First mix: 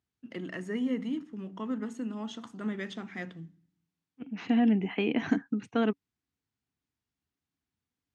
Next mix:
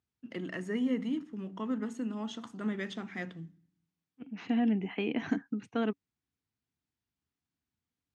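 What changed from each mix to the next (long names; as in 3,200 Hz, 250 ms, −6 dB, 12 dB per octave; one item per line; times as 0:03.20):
second voice −4.0 dB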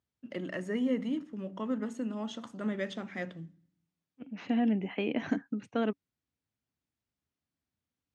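master: add parametric band 570 Hz +13.5 dB 0.21 octaves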